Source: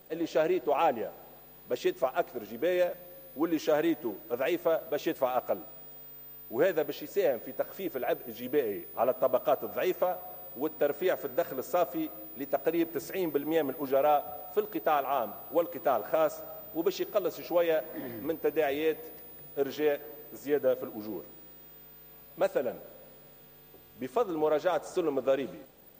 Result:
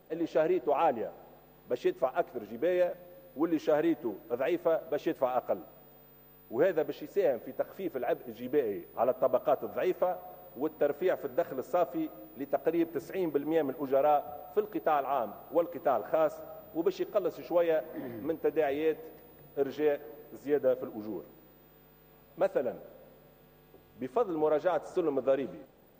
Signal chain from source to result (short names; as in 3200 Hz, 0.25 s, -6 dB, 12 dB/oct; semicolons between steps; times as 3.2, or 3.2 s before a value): high shelf 2800 Hz -11.5 dB